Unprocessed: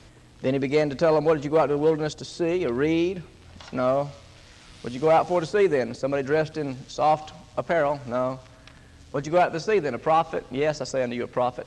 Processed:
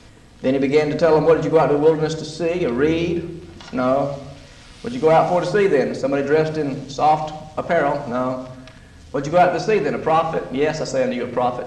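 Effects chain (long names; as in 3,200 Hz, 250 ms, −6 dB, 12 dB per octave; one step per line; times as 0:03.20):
rectangular room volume 2,300 cubic metres, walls furnished, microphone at 1.8 metres
level +3.5 dB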